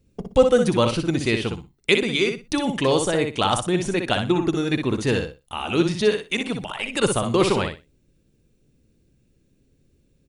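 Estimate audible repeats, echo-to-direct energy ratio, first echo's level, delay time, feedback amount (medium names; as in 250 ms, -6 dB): 3, -6.0 dB, -6.0 dB, 61 ms, 19%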